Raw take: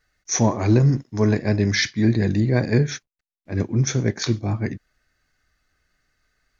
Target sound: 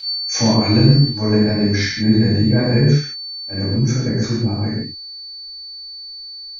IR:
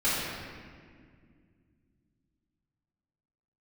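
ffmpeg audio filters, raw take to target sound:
-filter_complex "[0:a]aeval=exprs='val(0)+0.0631*sin(2*PI*4500*n/s)':c=same,asetnsamples=n=441:p=0,asendcmd='1.07 equalizer g -7;3.72 equalizer g -13.5',equalizer=f=3.3k:t=o:w=1.1:g=2[a];[1:a]atrim=start_sample=2205,afade=t=out:st=0.23:d=0.01,atrim=end_sample=10584[b];[a][b]afir=irnorm=-1:irlink=0,volume=-8dB"

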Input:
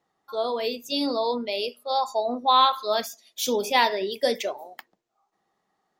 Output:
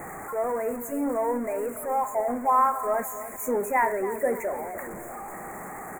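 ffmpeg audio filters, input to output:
-filter_complex "[0:a]aeval=exprs='val(0)+0.5*0.0376*sgn(val(0))':c=same,asuperstop=centerf=4000:order=12:qfactor=0.8,asplit=2[a][b];[b]adelay=288,lowpass=f=2k:p=1,volume=-12.5dB,asplit=2[c][d];[d]adelay=288,lowpass=f=2k:p=1,volume=0.5,asplit=2[e][f];[f]adelay=288,lowpass=f=2k:p=1,volume=0.5,asplit=2[g][h];[h]adelay=288,lowpass=f=2k:p=1,volume=0.5,asplit=2[i][j];[j]adelay=288,lowpass=f=2k:p=1,volume=0.5[k];[a][c][e][g][i][k]amix=inputs=6:normalize=0,volume=-3dB"

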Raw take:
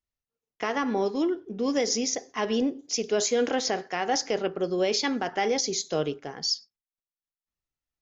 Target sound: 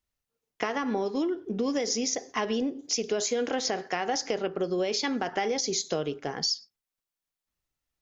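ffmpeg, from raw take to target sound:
-af "acompressor=threshold=-31dB:ratio=6,volume=5.5dB"

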